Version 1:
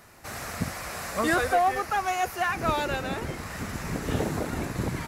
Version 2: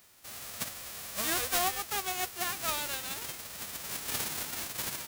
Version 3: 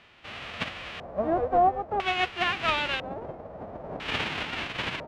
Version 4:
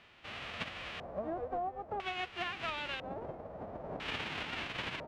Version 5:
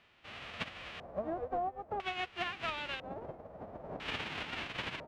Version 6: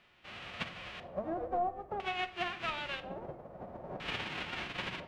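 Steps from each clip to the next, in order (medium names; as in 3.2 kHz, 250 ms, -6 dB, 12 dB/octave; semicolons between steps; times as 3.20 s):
formants flattened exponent 0.1; trim -7 dB
treble shelf 3.8 kHz -12 dB; LFO low-pass square 0.5 Hz 640–2900 Hz; trim +8.5 dB
compression 5:1, threshold -31 dBFS, peak gain reduction 12 dB; trim -4.5 dB
upward expansion 1.5:1, over -49 dBFS; trim +2 dB
reverberation RT60 0.65 s, pre-delay 5 ms, DRR 8.5 dB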